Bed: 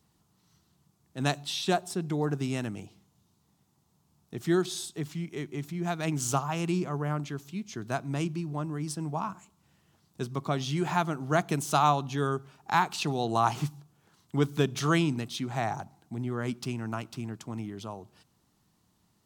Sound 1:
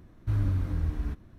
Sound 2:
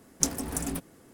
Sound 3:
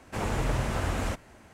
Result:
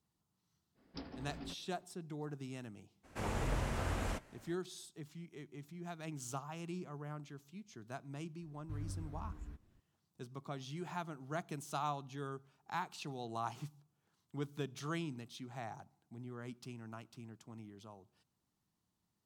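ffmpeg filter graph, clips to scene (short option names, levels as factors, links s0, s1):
-filter_complex "[0:a]volume=0.178[s0];[2:a]aresample=11025,aresample=44100[s1];[3:a]flanger=delay=4:depth=9.9:regen=-74:speed=1.7:shape=sinusoidal[s2];[s1]atrim=end=1.13,asetpts=PTS-STARTPTS,volume=0.2,afade=t=in:d=0.05,afade=t=out:st=1.08:d=0.05,adelay=740[s3];[s2]atrim=end=1.53,asetpts=PTS-STARTPTS,volume=0.668,afade=t=in:d=0.02,afade=t=out:st=1.51:d=0.02,adelay=3030[s4];[1:a]atrim=end=1.38,asetpts=PTS-STARTPTS,volume=0.141,afade=t=in:d=0.004:c=hsin,afade=t=out:st=1.376:d=0.004:c=hsin,adelay=371322S[s5];[s0][s3][s4][s5]amix=inputs=4:normalize=0"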